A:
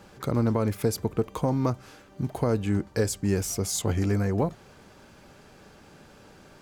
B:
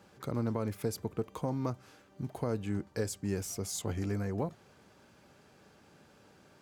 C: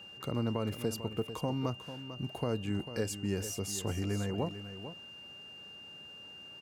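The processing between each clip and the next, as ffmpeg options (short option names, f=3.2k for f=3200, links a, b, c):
-af "highpass=71,volume=-8.5dB"
-af "aeval=exprs='val(0)+0.00398*sin(2*PI*2800*n/s)':c=same,aecho=1:1:446:0.266"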